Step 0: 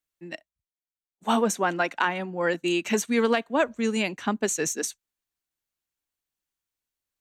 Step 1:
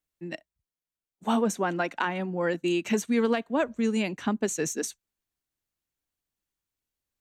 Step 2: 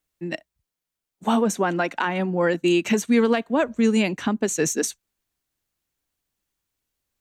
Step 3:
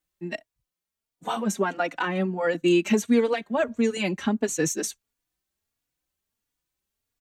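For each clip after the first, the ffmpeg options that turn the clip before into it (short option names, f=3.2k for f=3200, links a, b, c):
-filter_complex "[0:a]lowshelf=f=430:g=7.5,asplit=2[a][b];[b]acompressor=threshold=-27dB:ratio=6,volume=2dB[c];[a][c]amix=inputs=2:normalize=0,volume=-8.5dB"
-af "alimiter=limit=-17.5dB:level=0:latency=1:release=191,volume=7dB"
-filter_complex "[0:a]asplit=2[a][b];[b]adelay=3.5,afreqshift=1.5[c];[a][c]amix=inputs=2:normalize=1"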